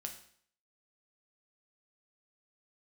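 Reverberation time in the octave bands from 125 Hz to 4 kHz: 0.60, 0.60, 0.60, 0.60, 0.55, 0.55 seconds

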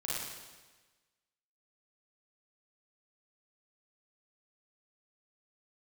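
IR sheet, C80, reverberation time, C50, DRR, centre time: 0.5 dB, 1.3 s, −3.5 dB, −7.5 dB, 105 ms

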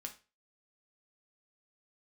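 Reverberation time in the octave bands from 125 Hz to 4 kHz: 0.35, 0.30, 0.35, 0.30, 0.30, 0.30 seconds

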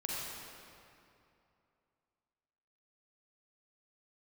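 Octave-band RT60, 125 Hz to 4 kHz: 2.9, 2.7, 2.7, 2.7, 2.3, 1.8 seconds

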